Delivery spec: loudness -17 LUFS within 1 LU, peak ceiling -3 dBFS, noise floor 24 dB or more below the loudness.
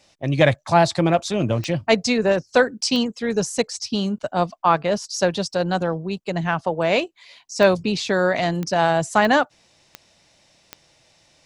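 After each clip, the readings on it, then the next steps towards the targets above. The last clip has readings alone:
clicks found 7; loudness -21.0 LUFS; peak level -2.5 dBFS; loudness target -17.0 LUFS
-> de-click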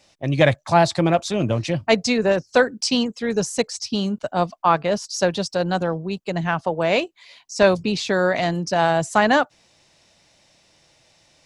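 clicks found 0; loudness -21.0 LUFS; peak level -2.5 dBFS; loudness target -17.0 LUFS
-> trim +4 dB; peak limiter -3 dBFS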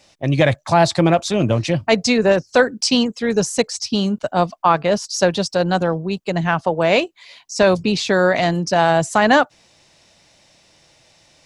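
loudness -17.5 LUFS; peak level -3.0 dBFS; noise floor -56 dBFS

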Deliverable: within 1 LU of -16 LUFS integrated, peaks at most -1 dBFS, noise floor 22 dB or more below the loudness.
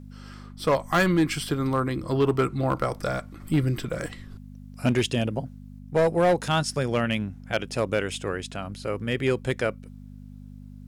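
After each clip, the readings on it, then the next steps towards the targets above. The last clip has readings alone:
clipped samples 0.9%; clipping level -15.0 dBFS; hum 50 Hz; highest harmonic 250 Hz; hum level -41 dBFS; loudness -26.0 LUFS; peak level -15.0 dBFS; loudness target -16.0 LUFS
-> clip repair -15 dBFS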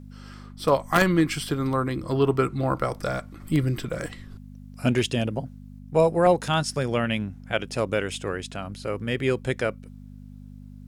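clipped samples 0.0%; hum 50 Hz; highest harmonic 250 Hz; hum level -41 dBFS
-> de-hum 50 Hz, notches 5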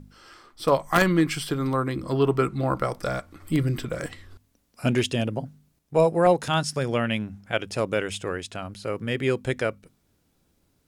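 hum not found; loudness -25.5 LUFS; peak level -6.0 dBFS; loudness target -16.0 LUFS
-> trim +9.5 dB; peak limiter -1 dBFS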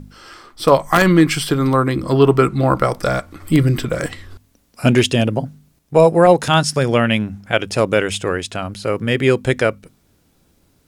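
loudness -16.5 LUFS; peak level -1.0 dBFS; noise floor -59 dBFS

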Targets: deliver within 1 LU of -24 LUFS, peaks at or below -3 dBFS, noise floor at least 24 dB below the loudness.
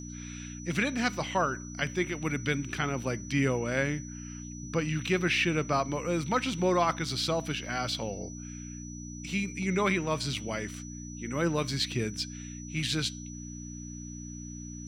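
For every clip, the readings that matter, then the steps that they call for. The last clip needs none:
hum 60 Hz; highest harmonic 300 Hz; hum level -40 dBFS; steady tone 5.9 kHz; tone level -46 dBFS; loudness -30.5 LUFS; peak level -14.5 dBFS; loudness target -24.0 LUFS
-> de-hum 60 Hz, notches 5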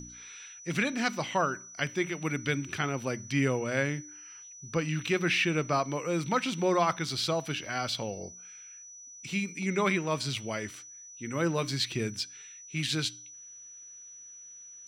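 hum not found; steady tone 5.9 kHz; tone level -46 dBFS
-> band-stop 5.9 kHz, Q 30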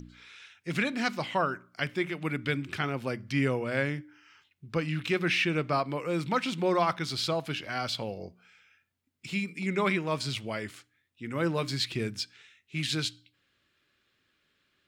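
steady tone not found; loudness -30.5 LUFS; peak level -14.5 dBFS; loudness target -24.0 LUFS
-> trim +6.5 dB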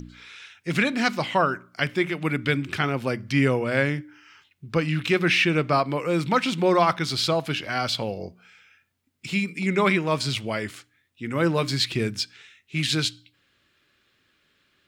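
loudness -24.0 LUFS; peak level -8.0 dBFS; noise floor -68 dBFS

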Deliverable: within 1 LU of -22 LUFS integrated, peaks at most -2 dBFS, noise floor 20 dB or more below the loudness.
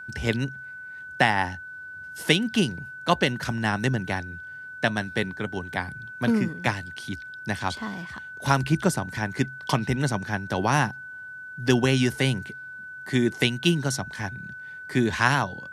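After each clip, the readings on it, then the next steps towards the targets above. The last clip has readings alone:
steady tone 1.5 kHz; tone level -37 dBFS; loudness -26.0 LUFS; peak level -3.5 dBFS; loudness target -22.0 LUFS
-> band-stop 1.5 kHz, Q 30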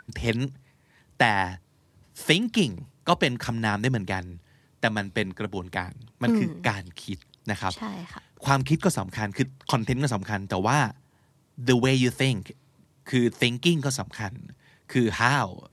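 steady tone not found; loudness -26.0 LUFS; peak level -3.5 dBFS; loudness target -22.0 LUFS
-> trim +4 dB; peak limiter -2 dBFS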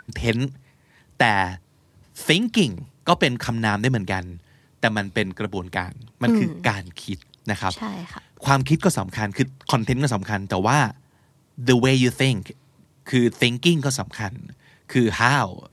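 loudness -22.0 LUFS; peak level -2.0 dBFS; noise floor -59 dBFS

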